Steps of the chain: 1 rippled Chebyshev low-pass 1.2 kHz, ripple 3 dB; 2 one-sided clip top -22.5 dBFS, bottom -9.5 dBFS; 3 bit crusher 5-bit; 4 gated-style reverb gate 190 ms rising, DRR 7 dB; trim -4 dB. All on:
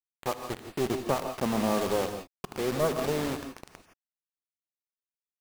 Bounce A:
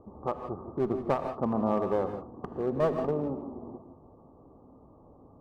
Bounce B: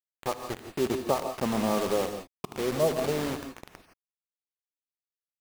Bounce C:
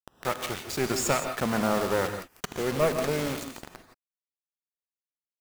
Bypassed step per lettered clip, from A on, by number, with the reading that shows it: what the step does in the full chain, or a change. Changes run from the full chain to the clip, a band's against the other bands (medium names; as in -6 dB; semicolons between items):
3, distortion -9 dB; 2, distortion -15 dB; 1, 8 kHz band +5.0 dB